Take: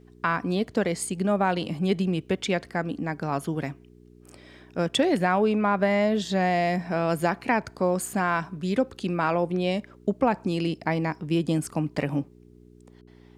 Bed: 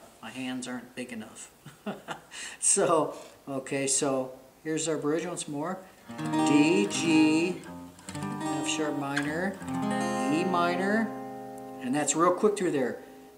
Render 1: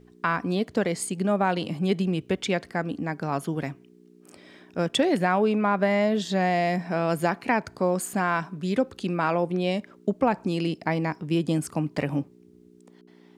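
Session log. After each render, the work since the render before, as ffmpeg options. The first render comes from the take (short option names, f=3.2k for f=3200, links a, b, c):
-af "bandreject=f=60:t=h:w=4,bandreject=f=120:t=h:w=4"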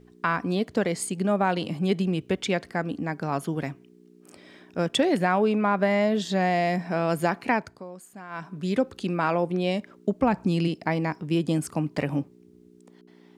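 -filter_complex "[0:a]asplit=3[a][b][c];[a]afade=t=out:st=10.21:d=0.02[d];[b]asubboost=boost=2:cutoff=240,afade=t=in:st=10.21:d=0.02,afade=t=out:st=10.67:d=0.02[e];[c]afade=t=in:st=10.67:d=0.02[f];[d][e][f]amix=inputs=3:normalize=0,asplit=3[g][h][i];[g]atrim=end=7.84,asetpts=PTS-STARTPTS,afade=t=out:st=7.53:d=0.31:silence=0.141254[j];[h]atrim=start=7.84:end=8.29,asetpts=PTS-STARTPTS,volume=-17dB[k];[i]atrim=start=8.29,asetpts=PTS-STARTPTS,afade=t=in:d=0.31:silence=0.141254[l];[j][k][l]concat=n=3:v=0:a=1"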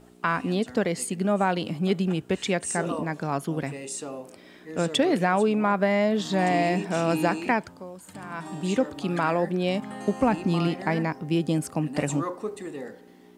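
-filter_complex "[1:a]volume=-8.5dB[a];[0:a][a]amix=inputs=2:normalize=0"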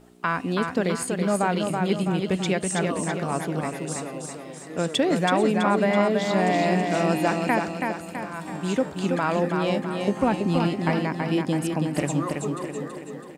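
-af "aecho=1:1:328|656|984|1312|1640|1968:0.596|0.292|0.143|0.0701|0.0343|0.0168"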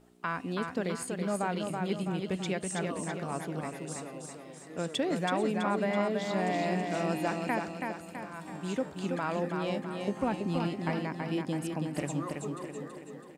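-af "volume=-8.5dB"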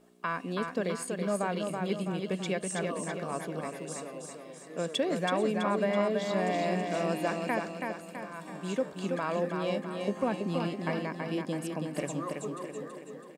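-af "lowshelf=f=140:t=q:w=1.5:g=-12,aecho=1:1:1.8:0.37"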